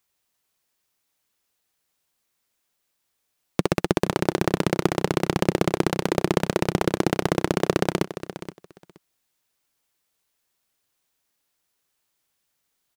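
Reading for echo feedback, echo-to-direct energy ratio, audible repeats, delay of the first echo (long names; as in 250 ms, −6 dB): 16%, −13.0 dB, 2, 473 ms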